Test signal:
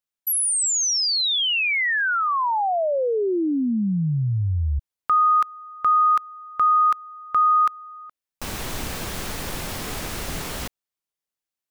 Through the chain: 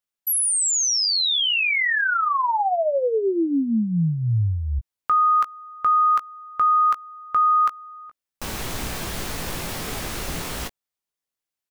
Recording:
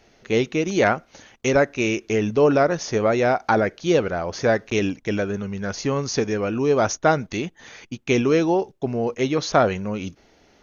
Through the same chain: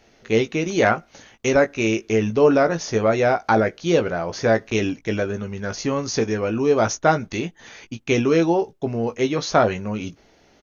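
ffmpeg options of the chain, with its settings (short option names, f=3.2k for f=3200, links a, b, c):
-filter_complex "[0:a]asplit=2[a][b];[b]adelay=18,volume=-8dB[c];[a][c]amix=inputs=2:normalize=0"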